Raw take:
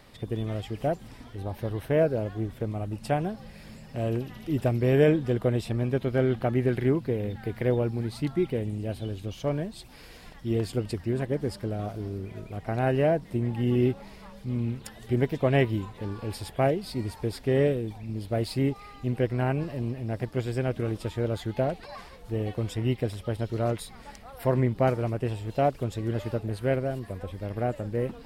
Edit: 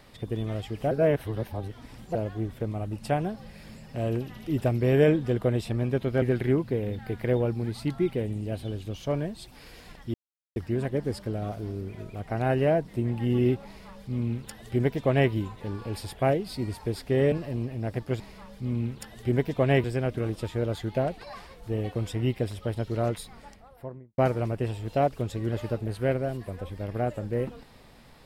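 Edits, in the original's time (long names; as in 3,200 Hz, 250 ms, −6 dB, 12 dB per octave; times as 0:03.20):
0:00.91–0:02.15: reverse
0:06.22–0:06.59: remove
0:10.51–0:10.93: silence
0:14.04–0:15.68: duplicate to 0:20.46
0:17.69–0:19.58: remove
0:23.77–0:24.80: fade out and dull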